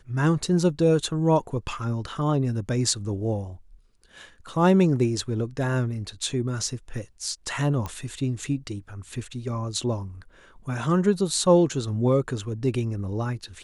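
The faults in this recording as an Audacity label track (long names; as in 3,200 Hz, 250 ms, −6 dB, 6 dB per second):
7.860000	7.860000	click −18 dBFS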